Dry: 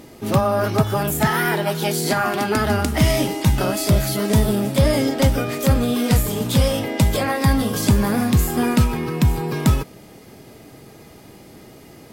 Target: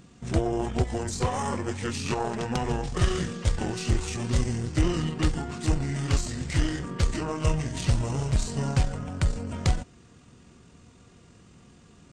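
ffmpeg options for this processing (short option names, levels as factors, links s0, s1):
-af "aeval=exprs='0.596*(cos(1*acos(clip(val(0)/0.596,-1,1)))-cos(1*PI/2))+0.0841*(cos(3*acos(clip(val(0)/0.596,-1,1)))-cos(3*PI/2))+0.00668*(cos(4*acos(clip(val(0)/0.596,-1,1)))-cos(4*PI/2))+0.0266*(cos(6*acos(clip(val(0)/0.596,-1,1)))-cos(6*PI/2))+0.00422*(cos(8*acos(clip(val(0)/0.596,-1,1)))-cos(8*PI/2))':c=same,asetrate=25476,aresample=44100,atempo=1.73107,volume=0.596"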